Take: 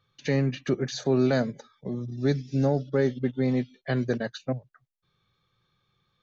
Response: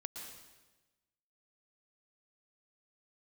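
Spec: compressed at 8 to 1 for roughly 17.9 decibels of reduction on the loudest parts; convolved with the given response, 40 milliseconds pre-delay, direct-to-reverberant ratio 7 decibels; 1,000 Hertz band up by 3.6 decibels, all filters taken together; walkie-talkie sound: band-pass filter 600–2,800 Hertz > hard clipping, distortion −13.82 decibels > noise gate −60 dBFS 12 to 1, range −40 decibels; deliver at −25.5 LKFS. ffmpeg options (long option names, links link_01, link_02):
-filter_complex "[0:a]equalizer=frequency=1000:width_type=o:gain=7,acompressor=threshold=-37dB:ratio=8,asplit=2[link_01][link_02];[1:a]atrim=start_sample=2205,adelay=40[link_03];[link_02][link_03]afir=irnorm=-1:irlink=0,volume=-5dB[link_04];[link_01][link_04]amix=inputs=2:normalize=0,highpass=600,lowpass=2800,asoftclip=type=hard:threshold=-39.5dB,agate=range=-40dB:threshold=-60dB:ratio=12,volume=24dB"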